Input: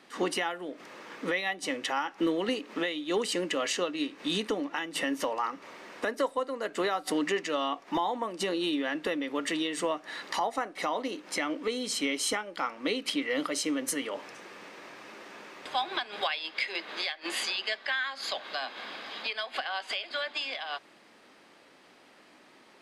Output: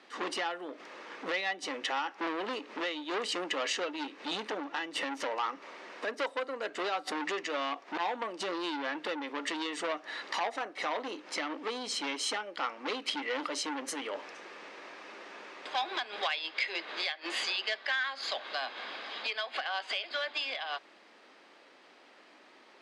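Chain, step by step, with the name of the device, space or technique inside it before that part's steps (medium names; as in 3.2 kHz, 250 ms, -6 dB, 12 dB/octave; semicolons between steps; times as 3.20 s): public-address speaker with an overloaded transformer (transformer saturation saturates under 2 kHz; band-pass 300–6000 Hz)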